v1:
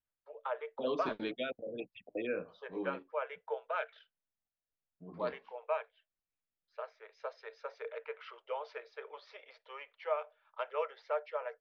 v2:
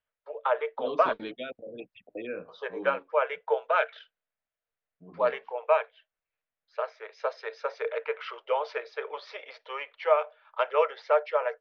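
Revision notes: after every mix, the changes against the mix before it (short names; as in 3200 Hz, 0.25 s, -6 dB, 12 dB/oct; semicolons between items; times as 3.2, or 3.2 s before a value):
first voice +11.5 dB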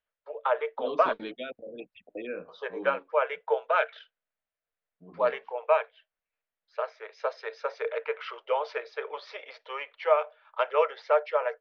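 second voice: add bell 120 Hz -11.5 dB 0.32 oct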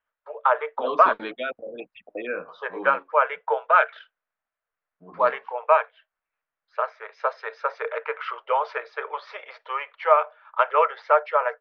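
first voice -4.5 dB; master: add bell 1200 Hz +14.5 dB 2 oct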